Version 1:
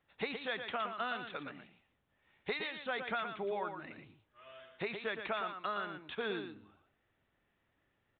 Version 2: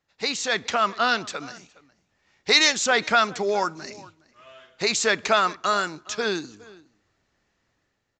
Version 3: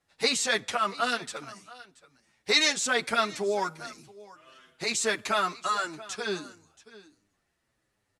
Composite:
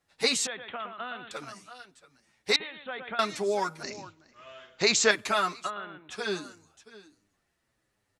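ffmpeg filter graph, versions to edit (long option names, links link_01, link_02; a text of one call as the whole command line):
ffmpeg -i take0.wav -i take1.wav -i take2.wav -filter_complex "[0:a]asplit=3[link_01][link_02][link_03];[2:a]asplit=5[link_04][link_05][link_06][link_07][link_08];[link_04]atrim=end=0.472[link_09];[link_01]atrim=start=0.468:end=1.312[link_10];[link_05]atrim=start=1.308:end=2.562[link_11];[link_02]atrim=start=2.558:end=3.192[link_12];[link_06]atrim=start=3.188:end=3.832[link_13];[1:a]atrim=start=3.828:end=5.112[link_14];[link_07]atrim=start=5.108:end=5.71[link_15];[link_03]atrim=start=5.65:end=6.16[link_16];[link_08]atrim=start=6.1[link_17];[link_09][link_10]acrossfade=duration=0.004:curve1=hsin:curve2=hsin[link_18];[link_18][link_11]acrossfade=duration=0.004:curve1=hsin:curve2=hsin[link_19];[link_19][link_12]acrossfade=duration=0.004:curve1=hsin:curve2=hsin[link_20];[link_20][link_13]acrossfade=duration=0.004:curve1=hsin:curve2=hsin[link_21];[link_21][link_14]acrossfade=duration=0.004:curve1=hsin:curve2=hsin[link_22];[link_22][link_15]acrossfade=duration=0.004:curve1=hsin:curve2=hsin[link_23];[link_23][link_16]acrossfade=duration=0.06:curve1=tri:curve2=tri[link_24];[link_24][link_17]acrossfade=duration=0.06:curve1=tri:curve2=tri" out.wav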